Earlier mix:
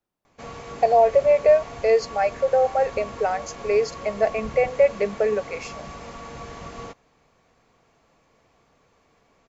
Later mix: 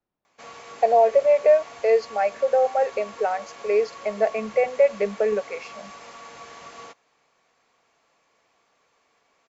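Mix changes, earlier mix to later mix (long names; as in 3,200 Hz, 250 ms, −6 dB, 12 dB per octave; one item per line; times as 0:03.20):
speech: add high-frequency loss of the air 150 metres
background: add high-pass filter 940 Hz 6 dB per octave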